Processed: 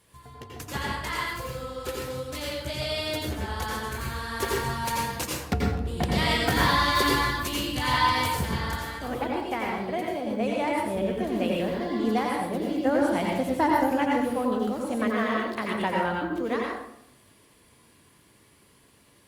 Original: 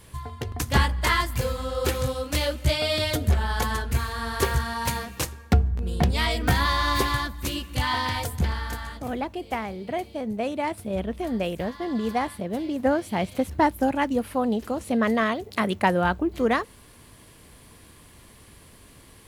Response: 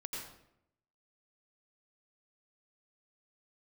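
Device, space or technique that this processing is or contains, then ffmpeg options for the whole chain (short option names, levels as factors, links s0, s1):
far-field microphone of a smart speaker: -filter_complex "[1:a]atrim=start_sample=2205[s0];[0:a][s0]afir=irnorm=-1:irlink=0,highpass=f=160:p=1,dynaudnorm=f=290:g=31:m=3.35,volume=0.501" -ar 48000 -c:a libopus -b:a 48k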